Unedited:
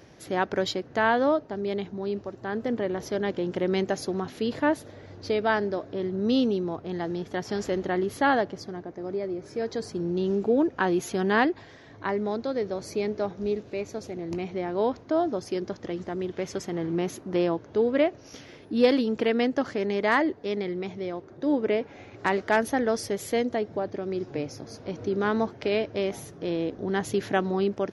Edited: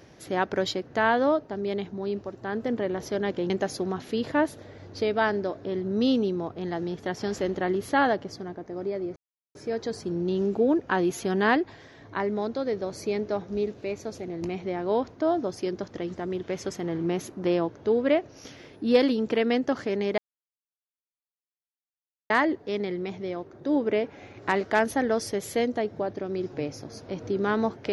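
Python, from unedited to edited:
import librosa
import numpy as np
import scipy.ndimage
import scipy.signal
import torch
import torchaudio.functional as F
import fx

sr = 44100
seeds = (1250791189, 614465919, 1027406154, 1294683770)

y = fx.edit(x, sr, fx.cut(start_s=3.5, length_s=0.28),
    fx.insert_silence(at_s=9.44, length_s=0.39),
    fx.insert_silence(at_s=20.07, length_s=2.12), tone=tone)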